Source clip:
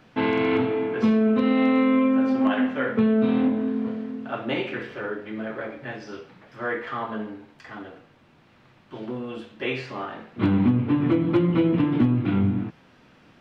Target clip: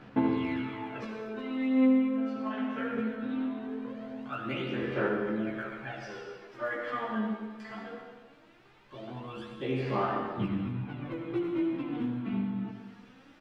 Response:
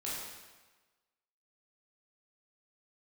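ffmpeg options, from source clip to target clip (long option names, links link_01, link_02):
-filter_complex "[0:a]acompressor=threshold=-27dB:ratio=6,aphaser=in_gain=1:out_gain=1:delay=4.6:decay=0.73:speed=0.2:type=sinusoidal,asplit=2[link_01][link_02];[link_02]adelay=15,volume=-2.5dB[link_03];[link_01][link_03]amix=inputs=2:normalize=0,asplit=2[link_04][link_05];[1:a]atrim=start_sample=2205,adelay=73[link_06];[link_05][link_06]afir=irnorm=-1:irlink=0,volume=-5.5dB[link_07];[link_04][link_07]amix=inputs=2:normalize=0,volume=-9dB"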